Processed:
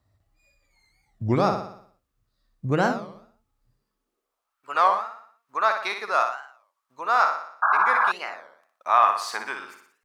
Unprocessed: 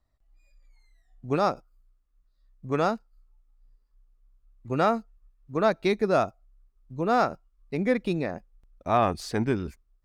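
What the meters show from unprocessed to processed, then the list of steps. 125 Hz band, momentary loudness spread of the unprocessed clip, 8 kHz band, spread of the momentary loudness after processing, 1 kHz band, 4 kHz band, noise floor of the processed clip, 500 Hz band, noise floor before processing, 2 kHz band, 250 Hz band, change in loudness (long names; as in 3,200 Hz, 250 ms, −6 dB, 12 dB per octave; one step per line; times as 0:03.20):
+0.5 dB, 16 LU, can't be measured, 18 LU, +7.0 dB, +3.5 dB, −81 dBFS, −3.0 dB, −70 dBFS, +9.5 dB, −3.5 dB, +3.5 dB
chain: flutter between parallel walls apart 10.3 metres, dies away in 0.54 s
sound drawn into the spectrogram noise, 0:07.62–0:08.12, 600–1,700 Hz −27 dBFS
in parallel at −1 dB: downward compressor, threshold −34 dBFS, peak gain reduction 17 dB
on the sum: high-pass filter sweep 97 Hz → 1,100 Hz, 0:03.68–0:04.59
wow of a warped record 33 1/3 rpm, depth 250 cents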